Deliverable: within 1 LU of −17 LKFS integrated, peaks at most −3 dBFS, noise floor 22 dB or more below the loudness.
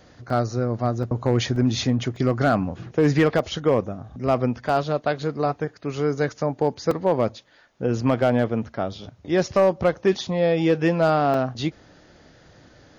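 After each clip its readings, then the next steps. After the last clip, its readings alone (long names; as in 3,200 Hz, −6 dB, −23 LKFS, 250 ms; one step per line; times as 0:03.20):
share of clipped samples 0.6%; peaks flattened at −10.0 dBFS; number of dropouts 8; longest dropout 2.9 ms; integrated loudness −23.0 LKFS; sample peak −10.0 dBFS; target loudness −17.0 LKFS
→ clipped peaks rebuilt −10 dBFS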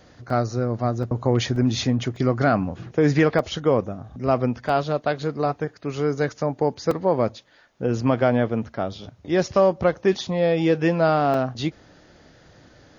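share of clipped samples 0.0%; number of dropouts 8; longest dropout 2.9 ms
→ repair the gap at 0:00.30/0:01.03/0:01.56/0:02.16/0:03.39/0:04.69/0:06.91/0:11.34, 2.9 ms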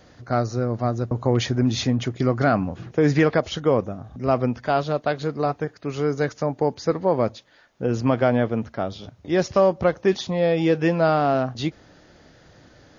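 number of dropouts 0; integrated loudness −23.0 LKFS; sample peak −5.5 dBFS; target loudness −17.0 LKFS
→ level +6 dB
brickwall limiter −3 dBFS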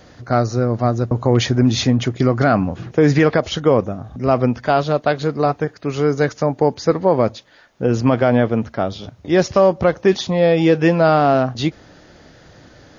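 integrated loudness −17.5 LKFS; sample peak −3.0 dBFS; background noise floor −47 dBFS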